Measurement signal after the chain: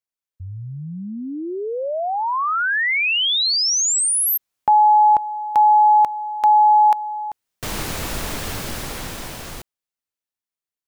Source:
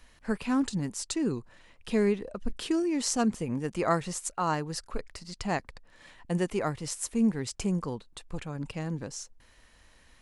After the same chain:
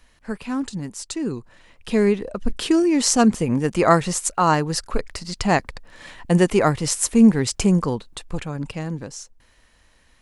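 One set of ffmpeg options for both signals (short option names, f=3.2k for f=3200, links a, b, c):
-af "dynaudnorm=f=130:g=31:m=13dB,volume=1dB"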